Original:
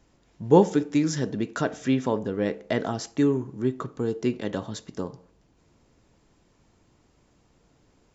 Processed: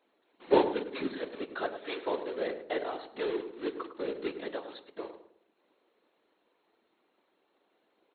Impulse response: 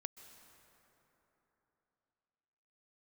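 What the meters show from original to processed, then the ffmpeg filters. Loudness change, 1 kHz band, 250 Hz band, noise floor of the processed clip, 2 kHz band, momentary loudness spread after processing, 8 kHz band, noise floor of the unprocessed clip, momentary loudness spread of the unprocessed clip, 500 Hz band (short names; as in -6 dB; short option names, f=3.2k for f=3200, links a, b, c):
-8.0 dB, -4.5 dB, -12.5 dB, -75 dBFS, -4.0 dB, 15 LU, n/a, -64 dBFS, 15 LU, -6.0 dB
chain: -filter_complex "[0:a]acrusher=bits=3:mode=log:mix=0:aa=0.000001,afftfilt=real='re*between(b*sr/4096,310,4300)':imag='im*between(b*sr/4096,310,4300)':win_size=4096:overlap=0.75,afftfilt=real='hypot(re,im)*cos(2*PI*random(0))':imag='hypot(re,im)*sin(2*PI*random(1))':win_size=512:overlap=0.75,asplit=2[a][b];[b]adelay=104,lowpass=f=1.1k:p=1,volume=-9dB,asplit=2[c][d];[d]adelay=104,lowpass=f=1.1k:p=1,volume=0.38,asplit=2[e][f];[f]adelay=104,lowpass=f=1.1k:p=1,volume=0.38,asplit=2[g][h];[h]adelay=104,lowpass=f=1.1k:p=1,volume=0.38[i];[c][e][g][i]amix=inputs=4:normalize=0[j];[a][j]amix=inputs=2:normalize=0"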